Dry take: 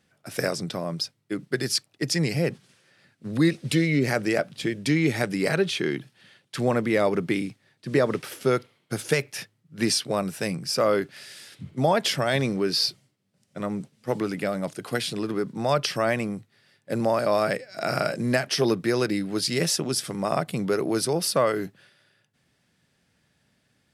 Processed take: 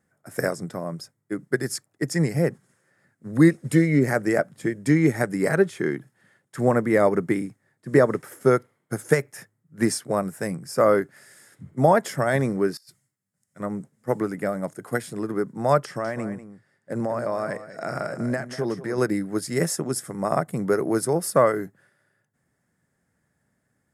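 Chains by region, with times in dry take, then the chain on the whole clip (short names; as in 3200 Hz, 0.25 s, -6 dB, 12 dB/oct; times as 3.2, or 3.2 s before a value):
12.77–13.6 passive tone stack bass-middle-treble 5-5-5 + negative-ratio compressor -38 dBFS, ratio -0.5
15.85–18.98 LPF 8700 Hz + compressor 3:1, threshold -24 dBFS + echo 0.194 s -10.5 dB
whole clip: band shelf 3400 Hz -15 dB 1.2 oct; notch 5900 Hz, Q 7; upward expander 1.5:1, over -34 dBFS; gain +5.5 dB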